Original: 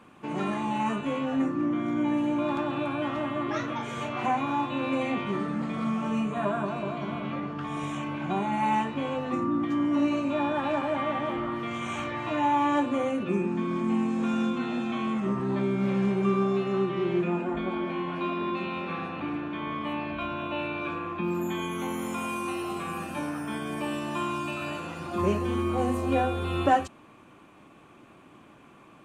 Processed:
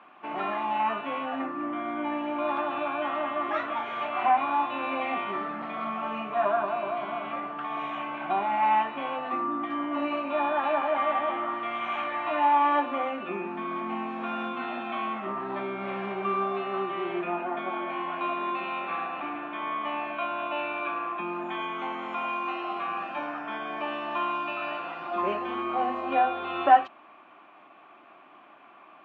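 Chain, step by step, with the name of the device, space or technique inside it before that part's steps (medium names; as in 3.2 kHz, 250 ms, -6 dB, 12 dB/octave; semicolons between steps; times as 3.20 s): phone earpiece (cabinet simulation 470–3200 Hz, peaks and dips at 480 Hz -8 dB, 700 Hz +7 dB, 1.2 kHz +3 dB); trim +2 dB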